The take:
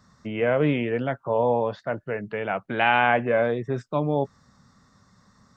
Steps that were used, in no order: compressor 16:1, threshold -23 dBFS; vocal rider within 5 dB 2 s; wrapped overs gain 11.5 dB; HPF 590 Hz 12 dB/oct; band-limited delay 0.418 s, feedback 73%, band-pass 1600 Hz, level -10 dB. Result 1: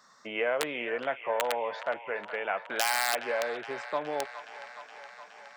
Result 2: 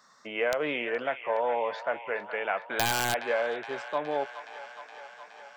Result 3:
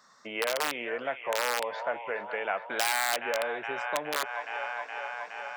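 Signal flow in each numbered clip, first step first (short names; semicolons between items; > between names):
wrapped overs > compressor > HPF > vocal rider > band-limited delay; vocal rider > HPF > wrapped overs > compressor > band-limited delay; band-limited delay > vocal rider > wrapped overs > compressor > HPF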